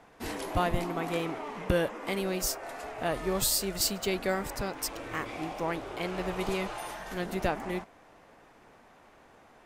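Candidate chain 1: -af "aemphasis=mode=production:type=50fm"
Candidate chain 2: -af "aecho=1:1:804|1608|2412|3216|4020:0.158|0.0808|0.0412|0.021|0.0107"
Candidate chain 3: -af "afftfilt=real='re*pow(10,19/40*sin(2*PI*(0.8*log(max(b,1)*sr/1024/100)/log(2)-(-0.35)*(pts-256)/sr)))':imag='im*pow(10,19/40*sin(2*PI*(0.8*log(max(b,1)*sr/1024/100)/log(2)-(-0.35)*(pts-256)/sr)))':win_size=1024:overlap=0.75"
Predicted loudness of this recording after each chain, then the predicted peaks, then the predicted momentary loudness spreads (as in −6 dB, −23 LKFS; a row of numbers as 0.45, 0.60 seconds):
−25.5, −32.0, −28.0 LKFS; −2.5, −12.5, −8.5 dBFS; 17, 18, 10 LU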